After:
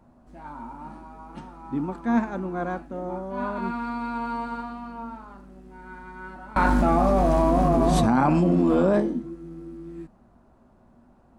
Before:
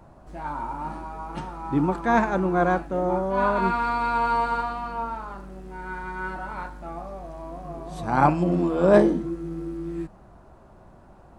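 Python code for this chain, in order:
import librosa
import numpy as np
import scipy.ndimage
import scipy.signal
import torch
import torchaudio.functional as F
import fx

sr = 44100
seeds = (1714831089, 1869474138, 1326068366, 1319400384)

y = fx.peak_eq(x, sr, hz=240.0, db=14.5, octaves=0.27)
y = fx.env_flatten(y, sr, amount_pct=100, at=(6.56, 9.0))
y = y * librosa.db_to_amplitude(-8.5)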